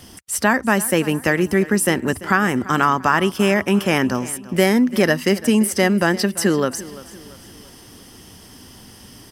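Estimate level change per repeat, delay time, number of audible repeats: −7.5 dB, 341 ms, 3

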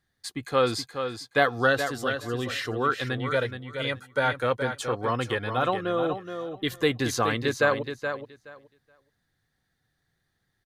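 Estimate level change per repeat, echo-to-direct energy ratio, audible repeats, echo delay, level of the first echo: −16.0 dB, −8.0 dB, 2, 423 ms, −8.0 dB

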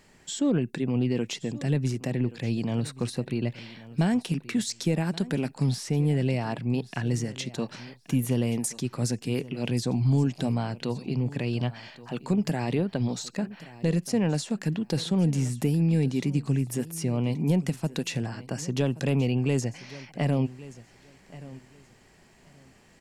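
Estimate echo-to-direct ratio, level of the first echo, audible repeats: −18.0 dB, −18.0 dB, 2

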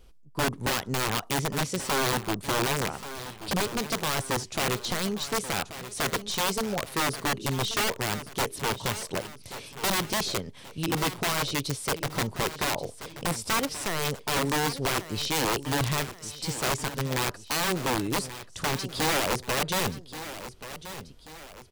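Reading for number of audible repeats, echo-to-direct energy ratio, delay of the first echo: 2, −12.0 dB, 1,132 ms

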